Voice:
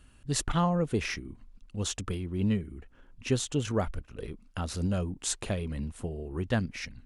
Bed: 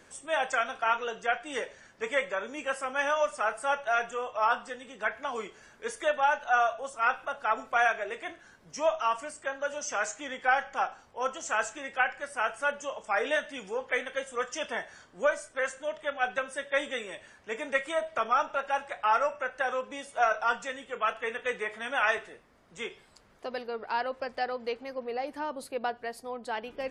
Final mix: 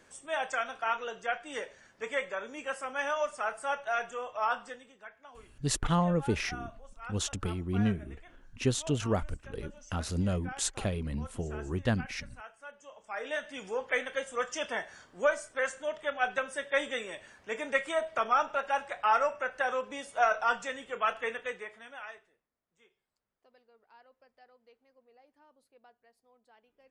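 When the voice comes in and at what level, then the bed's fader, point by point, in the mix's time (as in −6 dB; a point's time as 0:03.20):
5.35 s, −0.5 dB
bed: 0:04.71 −4 dB
0:05.07 −18.5 dB
0:12.71 −18.5 dB
0:13.65 −0.5 dB
0:21.27 −0.5 dB
0:22.51 −28.5 dB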